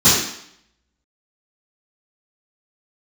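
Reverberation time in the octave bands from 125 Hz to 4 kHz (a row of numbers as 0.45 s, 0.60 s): 0.50 s, 0.70 s, 0.65 s, 0.70 s, 0.70 s, 0.70 s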